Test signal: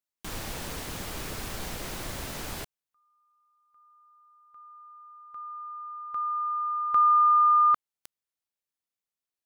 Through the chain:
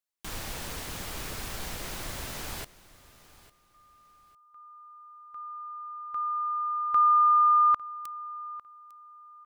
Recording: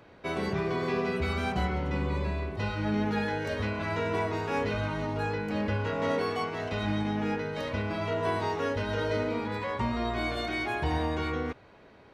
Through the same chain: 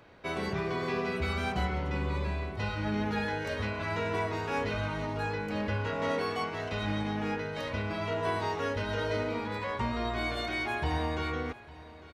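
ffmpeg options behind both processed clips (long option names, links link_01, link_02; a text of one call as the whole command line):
ffmpeg -i in.wav -af "equalizer=frequency=270:width_type=o:width=2.9:gain=-3.5,aecho=1:1:852|1704:0.112|0.0303" out.wav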